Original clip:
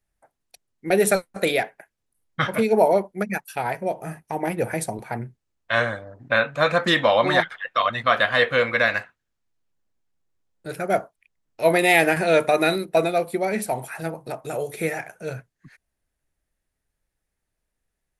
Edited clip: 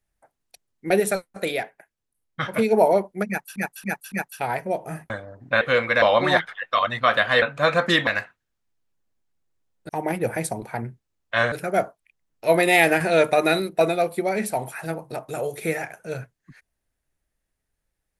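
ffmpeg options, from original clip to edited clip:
-filter_complex "[0:a]asplit=13[s0][s1][s2][s3][s4][s5][s6][s7][s8][s9][s10][s11][s12];[s0]atrim=end=1.002[s13];[s1]atrim=start=0.998:end=2.562,asetpts=PTS-STARTPTS,volume=0.596[s14];[s2]atrim=start=2.558:end=3.562[s15];[s3]atrim=start=3.278:end=3.562[s16];[s4]atrim=start=3.278:end=3.562[s17];[s5]atrim=start=3.278:end=4.262[s18];[s6]atrim=start=5.888:end=6.402[s19];[s7]atrim=start=8.448:end=8.862[s20];[s8]atrim=start=7.048:end=8.452[s21];[s9]atrim=start=6.398:end=7.052[s22];[s10]atrim=start=8.858:end=10.682[s23];[s11]atrim=start=4.258:end=5.892[s24];[s12]atrim=start=10.678[s25];[s13][s14]acrossfade=d=0.004:c1=hsin:c2=hsin[s26];[s26][s15]acrossfade=d=0.004:c1=hsin:c2=hsin[s27];[s27][s16]acrossfade=d=0.004:c1=hsin:c2=hsin[s28];[s28][s17]acrossfade=d=0.004:c1=hsin:c2=hsin[s29];[s29][s18]acrossfade=d=0.004:c1=hsin:c2=hsin[s30];[s30][s19]acrossfade=d=0.004:c1=hsin:c2=hsin[s31];[s31][s20]acrossfade=d=0.004:c1=hsin:c2=hsin[s32];[s32][s21]acrossfade=d=0.004:c1=hsin:c2=hsin[s33];[s33][s22]acrossfade=d=0.004:c1=hsin:c2=hsin[s34];[s34][s23]acrossfade=d=0.004:c1=hsin:c2=hsin[s35];[s35][s24]acrossfade=d=0.004:c1=hsin:c2=hsin[s36];[s36][s25]acrossfade=d=0.004:c1=hsin:c2=hsin"

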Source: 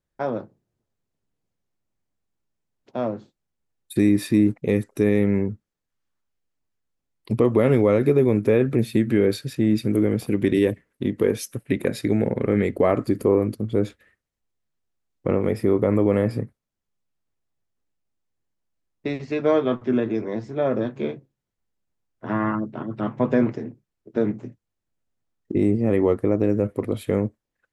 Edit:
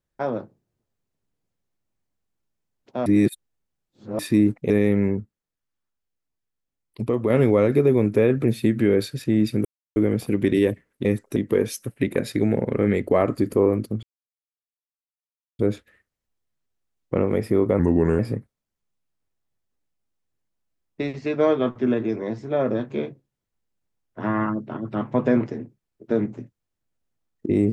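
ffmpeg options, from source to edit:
-filter_complex "[0:a]asplit=12[s0][s1][s2][s3][s4][s5][s6][s7][s8][s9][s10][s11];[s0]atrim=end=3.062[s12];[s1]atrim=start=3.058:end=4.192,asetpts=PTS-STARTPTS,areverse[s13];[s2]atrim=start=4.188:end=4.702[s14];[s3]atrim=start=5.008:end=5.512[s15];[s4]atrim=start=5.508:end=7.612,asetpts=PTS-STARTPTS,volume=0.596[s16];[s5]atrim=start=7.608:end=9.96,asetpts=PTS-STARTPTS,afade=t=out:st=2.348:d=0.004:c=hsin,apad=pad_dur=0.31[s17];[s6]atrim=start=9.96:end=11.052,asetpts=PTS-STARTPTS,afade=t=in:d=0.004:c=hsin[s18];[s7]atrim=start=4.698:end=5.012[s19];[s8]atrim=start=11.048:end=13.72,asetpts=PTS-STARTPTS,afade=t=out:st=2.668:d=0.004:c=hsin,apad=pad_dur=1.56[s20];[s9]atrim=start=13.72:end=15.924,asetpts=PTS-STARTPTS,afade=t=in:d=0.004:c=hsin[s21];[s10]atrim=start=15.92:end=16.25,asetpts=PTS-STARTPTS,asetrate=36162,aresample=44100[s22];[s11]atrim=start=16.246[s23];[s12][s13]acrossfade=d=0.004:c1=hsin:c2=hsin[s24];[s24][s14]acrossfade=d=0.004:c1=hsin:c2=hsin[s25];[s25][s15]acrossfade=d=0.004:c1=hsin:c2=hsin[s26];[s26][s16]acrossfade=d=0.004:c1=hsin:c2=hsin[s27];[s17][s18]concat=n=2:v=0:a=1[s28];[s27][s28]acrossfade=d=0.004:c1=hsin:c2=hsin[s29];[s29][s19]acrossfade=d=0.004:c1=hsin:c2=hsin[s30];[s20][s21]concat=n=2:v=0:a=1[s31];[s30][s31]acrossfade=d=0.004:c1=hsin:c2=hsin[s32];[s32][s22]acrossfade=d=0.004:c1=hsin:c2=hsin[s33];[s33][s23]acrossfade=d=0.004:c1=hsin:c2=hsin"

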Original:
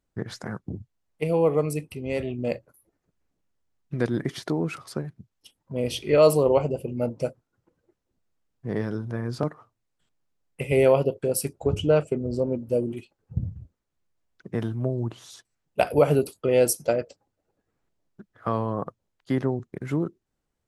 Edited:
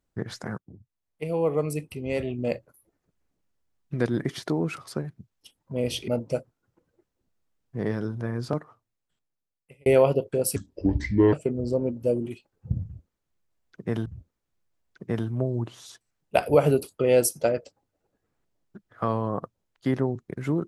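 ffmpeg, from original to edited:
-filter_complex "[0:a]asplit=7[s0][s1][s2][s3][s4][s5][s6];[s0]atrim=end=0.58,asetpts=PTS-STARTPTS,afade=t=out:st=0.576:d=0.004:c=hsin:silence=0.112202[s7];[s1]atrim=start=0.58:end=6.082,asetpts=PTS-STARTPTS,afade=t=in:d=1.38:silence=0.112202[s8];[s2]atrim=start=6.978:end=10.76,asetpts=PTS-STARTPTS,afade=t=out:st=2.252:d=1.53[s9];[s3]atrim=start=10.76:end=11.464,asetpts=PTS-STARTPTS,afade=t=in:d=0.004:c=hsin[s10];[s4]atrim=start=11.46:end=11.99,asetpts=PTS-STARTPTS,asetrate=30429,aresample=44100[s11];[s5]atrim=start=11.986:end=14.722[s12];[s6]atrim=start=13.498[s13];[s7][s8]concat=n=2:v=0:a=1[s14];[s9][s10]concat=n=2:v=0:a=1[s15];[s14][s15]acrossfade=d=0.004:c1=hsin:c2=hsin[s16];[s16][s11]acrossfade=d=0.004:c1=hsin:c2=hsin[s17];[s17][s12]acrossfade=d=0.004:c1=hsin:c2=hsin[s18];[s18][s13]acrossfade=d=0.004:c1=hsin:c2=hsin"

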